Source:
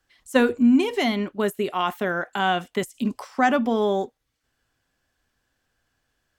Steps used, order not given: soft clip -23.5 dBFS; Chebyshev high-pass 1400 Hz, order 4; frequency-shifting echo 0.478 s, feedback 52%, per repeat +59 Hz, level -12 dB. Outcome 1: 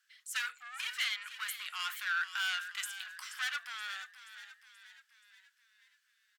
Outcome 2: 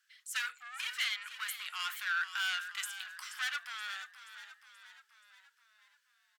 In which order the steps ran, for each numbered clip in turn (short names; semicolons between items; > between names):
soft clip > Chebyshev high-pass > frequency-shifting echo; soft clip > frequency-shifting echo > Chebyshev high-pass